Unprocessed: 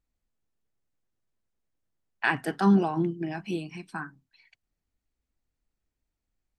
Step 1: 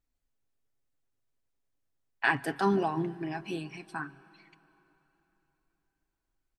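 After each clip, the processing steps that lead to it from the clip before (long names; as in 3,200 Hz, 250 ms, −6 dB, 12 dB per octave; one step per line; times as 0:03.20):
parametric band 180 Hz −7 dB 0.37 octaves
comb filter 7.3 ms, depth 37%
on a send at −20 dB: convolution reverb RT60 3.7 s, pre-delay 112 ms
on the sum: level −1.5 dB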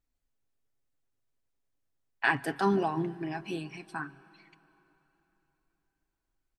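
no processing that can be heard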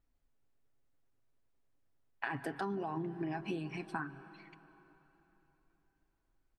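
high-shelf EQ 2,900 Hz −11 dB
brickwall limiter −23.5 dBFS, peak gain reduction 9 dB
downward compressor 16 to 1, threshold −39 dBFS, peak gain reduction 13 dB
level +5 dB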